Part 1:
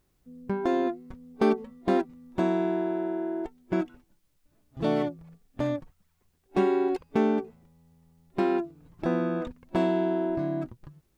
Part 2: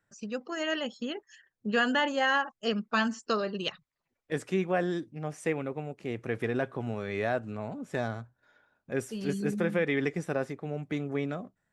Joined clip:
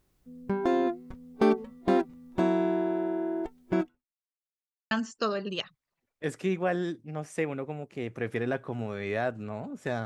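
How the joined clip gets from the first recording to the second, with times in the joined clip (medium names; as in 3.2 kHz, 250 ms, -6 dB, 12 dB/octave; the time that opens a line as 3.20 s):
part 1
3.81–4.43 s: fade out exponential
4.43–4.91 s: mute
4.91 s: go over to part 2 from 2.99 s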